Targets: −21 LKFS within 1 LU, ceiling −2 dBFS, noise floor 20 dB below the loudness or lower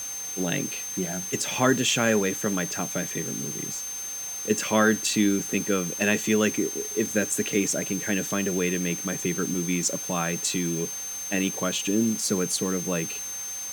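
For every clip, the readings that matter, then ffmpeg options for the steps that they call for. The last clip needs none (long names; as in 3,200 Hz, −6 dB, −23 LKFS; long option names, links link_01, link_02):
interfering tone 6,300 Hz; level of the tone −32 dBFS; background noise floor −34 dBFS; target noise floor −46 dBFS; integrated loudness −25.5 LKFS; sample peak −8.5 dBFS; target loudness −21.0 LKFS
→ -af "bandreject=frequency=6300:width=30"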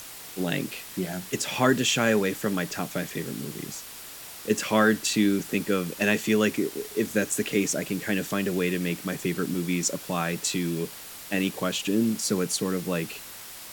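interfering tone none found; background noise floor −42 dBFS; target noise floor −47 dBFS
→ -af "afftdn=noise_reduction=6:noise_floor=-42"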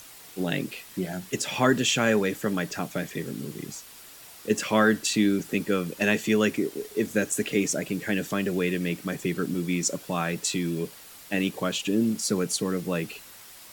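background noise floor −47 dBFS; integrated loudness −27.0 LKFS; sample peak −9.0 dBFS; target loudness −21.0 LKFS
→ -af "volume=6dB"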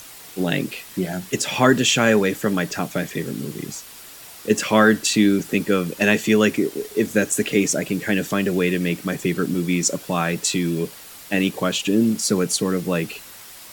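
integrated loudness −21.0 LKFS; sample peak −3.0 dBFS; background noise floor −41 dBFS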